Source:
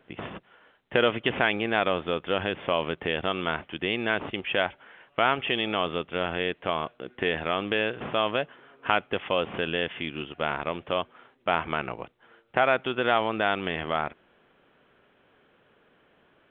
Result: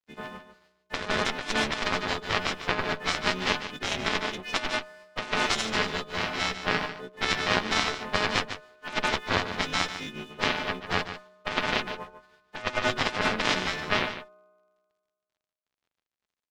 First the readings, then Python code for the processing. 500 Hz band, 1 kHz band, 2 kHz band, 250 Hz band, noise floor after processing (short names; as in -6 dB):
-5.5 dB, -1.5 dB, +1.0 dB, -2.0 dB, under -85 dBFS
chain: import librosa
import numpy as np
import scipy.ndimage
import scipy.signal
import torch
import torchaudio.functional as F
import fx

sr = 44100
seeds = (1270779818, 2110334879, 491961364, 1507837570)

y = fx.freq_snap(x, sr, grid_st=3)
y = fx.lowpass(y, sr, hz=2100.0, slope=6)
y = y + 0.63 * np.pad(y, (int(4.6 * sr / 1000.0), 0))[:len(y)]
y = np.sign(y) * np.maximum(np.abs(y) - 10.0 ** (-51.5 / 20.0), 0.0)
y = fx.comb_fb(y, sr, f0_hz=62.0, decay_s=1.6, harmonics='all', damping=0.0, mix_pct=30)
y = fx.cheby_harmonics(y, sr, harmonics=(4, 6, 7), levels_db=(-7, -23, -13), full_scale_db=-10.5)
y = y + 10.0 ** (-11.0 / 20.0) * np.pad(y, (int(147 * sr / 1000.0), 0))[:len(y)]
y = fx.over_compress(y, sr, threshold_db=-28.0, ratio=-0.5)
y = y * librosa.db_to_amplitude(3.0)